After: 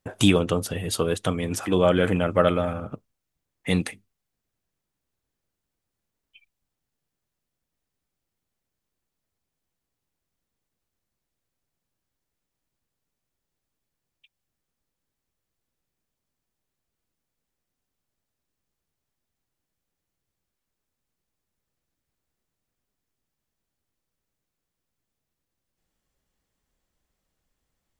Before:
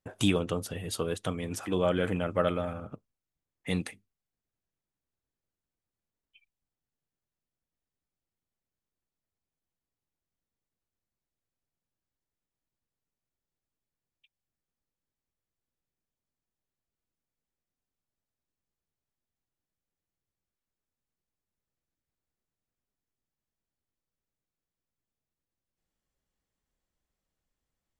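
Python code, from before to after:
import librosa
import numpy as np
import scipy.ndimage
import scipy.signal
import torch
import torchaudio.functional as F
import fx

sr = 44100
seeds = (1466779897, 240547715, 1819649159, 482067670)

y = x * librosa.db_to_amplitude(7.5)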